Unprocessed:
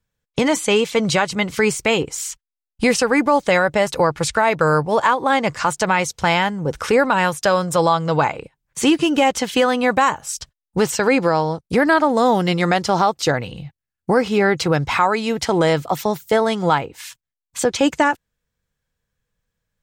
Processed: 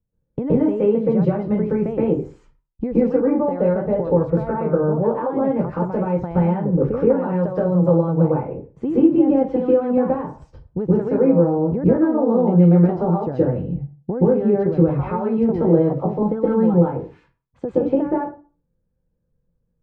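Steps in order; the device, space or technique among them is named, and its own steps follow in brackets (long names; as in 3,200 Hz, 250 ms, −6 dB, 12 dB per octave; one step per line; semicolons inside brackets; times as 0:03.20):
television next door (downward compressor 4 to 1, threshold −20 dBFS, peak gain reduction 8.5 dB; low-pass filter 460 Hz 12 dB per octave; convolution reverb RT60 0.40 s, pre-delay 117 ms, DRR −8 dB)
0:16.22–0:16.74: comb filter 3.8 ms, depth 90%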